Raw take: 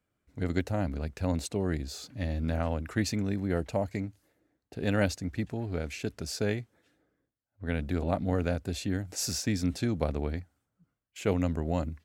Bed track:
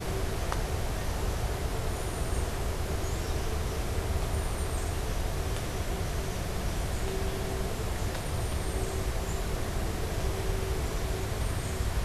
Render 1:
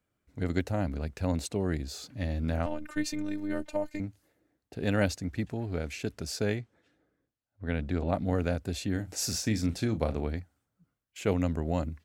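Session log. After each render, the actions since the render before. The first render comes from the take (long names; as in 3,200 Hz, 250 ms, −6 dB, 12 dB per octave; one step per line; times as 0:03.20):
0:02.66–0:04.00: phases set to zero 303 Hz
0:06.58–0:08.14: high-frequency loss of the air 56 metres
0:08.92–0:10.27: double-tracking delay 36 ms −11 dB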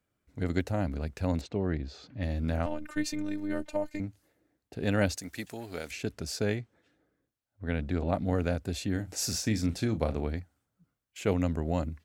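0:01.41–0:02.23: high-frequency loss of the air 200 metres
0:05.17–0:05.91: RIAA equalisation recording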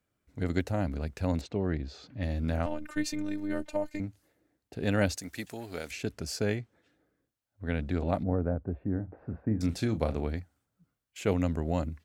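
0:06.18–0:06.61: notch filter 3,700 Hz
0:08.23–0:09.61: Bessel low-pass filter 910 Hz, order 6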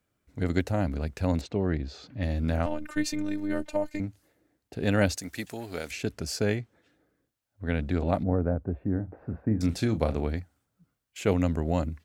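level +3 dB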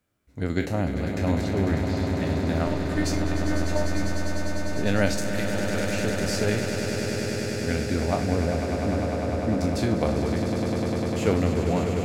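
peak hold with a decay on every bin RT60 0.33 s
echo that builds up and dies away 100 ms, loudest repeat 8, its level −9 dB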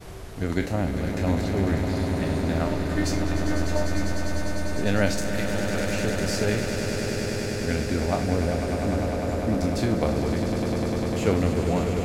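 mix in bed track −8 dB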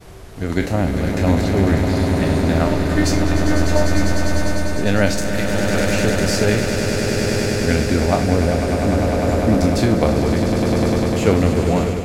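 automatic gain control gain up to 10.5 dB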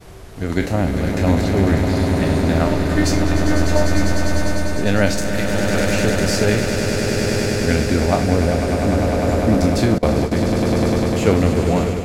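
0:09.98–0:10.39: noise gate with hold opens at −7 dBFS, closes at −12 dBFS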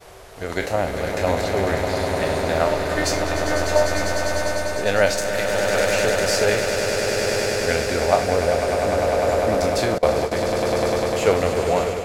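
low shelf with overshoot 370 Hz −10 dB, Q 1.5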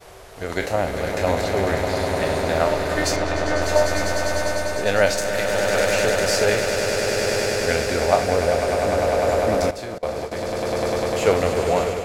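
0:03.16–0:03.62: high-frequency loss of the air 53 metres
0:09.71–0:11.31: fade in, from −13 dB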